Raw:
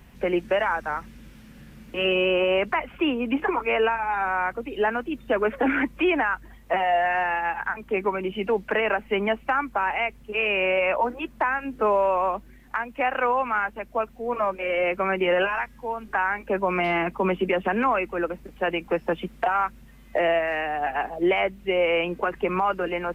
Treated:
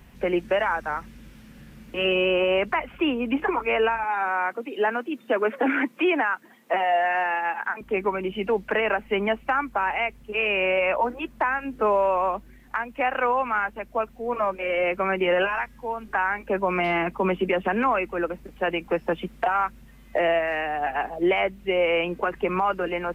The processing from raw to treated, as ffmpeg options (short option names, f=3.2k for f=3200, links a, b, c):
-filter_complex "[0:a]asettb=1/sr,asplit=3[a][b][c];[a]atrim=end=4.044[d];[b]atrim=start=4.04:end=7.81,asetpts=PTS-STARTPTS,afade=t=in:d=0.004:c=qsin,afade=t=out:st=3.766:d=0.004:c=qsin,highpass=f=210:w=0.5412,highpass=f=210:w=1.3066[e];[c]atrim=start=7.806[f];[d][e]acrossfade=d=0.004:c1=hsin:c2=qsin[g];[g][f]acrossfade=d=0.004:c1=qsin:c2=hsin"